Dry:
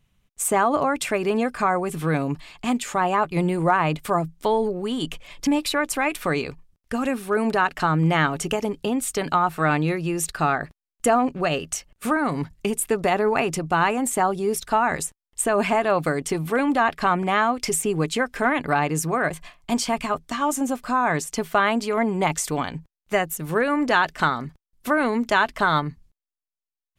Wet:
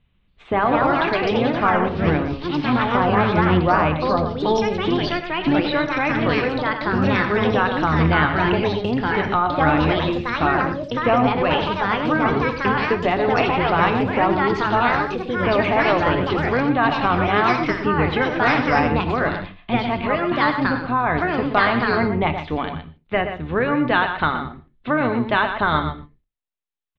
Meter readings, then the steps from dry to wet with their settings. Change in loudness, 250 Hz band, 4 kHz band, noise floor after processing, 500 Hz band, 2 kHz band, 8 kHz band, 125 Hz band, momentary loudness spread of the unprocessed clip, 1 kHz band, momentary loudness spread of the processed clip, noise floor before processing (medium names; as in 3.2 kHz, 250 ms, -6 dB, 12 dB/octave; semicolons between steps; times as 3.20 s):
+3.5 dB, +4.0 dB, +4.0 dB, -59 dBFS, +3.5 dB, +4.5 dB, under -20 dB, +5.0 dB, 7 LU, +3.5 dB, 6 LU, under -85 dBFS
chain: octave divider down 1 oct, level -5 dB; Chebyshev low-pass 3.8 kHz, order 5; on a send: delay 121 ms -9 dB; on the sum: gated-style reverb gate 170 ms falling, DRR 10 dB; ever faster or slower copies 278 ms, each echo +3 st, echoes 2; trim +1 dB